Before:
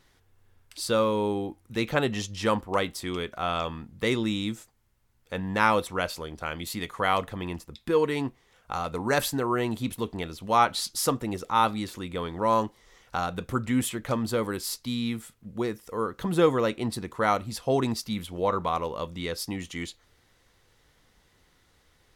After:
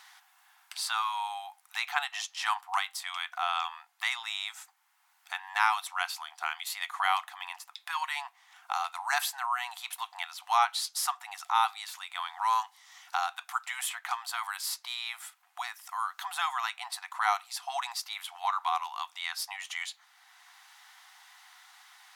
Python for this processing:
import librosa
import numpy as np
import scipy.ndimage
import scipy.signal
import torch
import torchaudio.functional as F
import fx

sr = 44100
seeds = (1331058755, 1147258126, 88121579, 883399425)

y = fx.brickwall_highpass(x, sr, low_hz=700.0)
y = fx.band_squash(y, sr, depth_pct=40)